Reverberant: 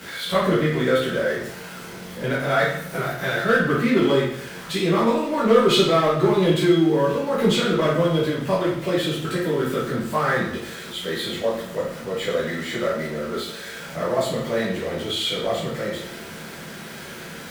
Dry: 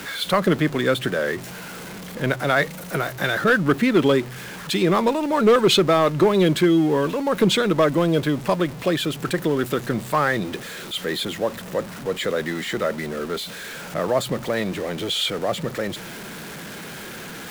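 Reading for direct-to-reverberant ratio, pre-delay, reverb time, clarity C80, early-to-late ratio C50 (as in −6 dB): −8.0 dB, 9 ms, 0.70 s, 6.5 dB, 2.5 dB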